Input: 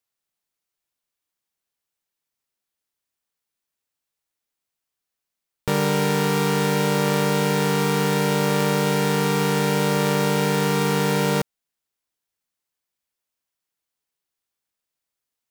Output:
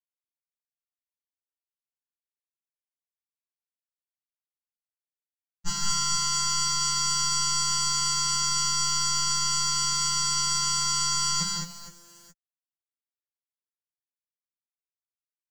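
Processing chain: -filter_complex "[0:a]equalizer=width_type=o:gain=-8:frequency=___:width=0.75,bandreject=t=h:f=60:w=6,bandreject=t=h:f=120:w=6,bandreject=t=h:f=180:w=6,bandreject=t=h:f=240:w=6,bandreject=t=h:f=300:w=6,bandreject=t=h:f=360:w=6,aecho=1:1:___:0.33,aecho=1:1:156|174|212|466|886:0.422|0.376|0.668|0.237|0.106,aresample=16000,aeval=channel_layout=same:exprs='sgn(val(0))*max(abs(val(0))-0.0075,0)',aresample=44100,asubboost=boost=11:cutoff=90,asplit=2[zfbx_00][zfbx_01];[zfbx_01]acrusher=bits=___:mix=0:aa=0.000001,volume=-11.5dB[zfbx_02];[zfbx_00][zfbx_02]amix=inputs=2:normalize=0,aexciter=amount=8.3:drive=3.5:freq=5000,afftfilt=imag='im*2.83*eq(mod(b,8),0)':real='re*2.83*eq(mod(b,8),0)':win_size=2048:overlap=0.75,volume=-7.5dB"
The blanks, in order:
450, 5.8, 7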